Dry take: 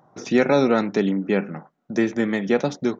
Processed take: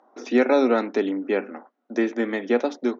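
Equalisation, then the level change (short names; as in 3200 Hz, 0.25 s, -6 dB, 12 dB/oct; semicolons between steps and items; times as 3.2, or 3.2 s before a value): elliptic high-pass 240 Hz, stop band 40 dB; air absorption 100 m; 0.0 dB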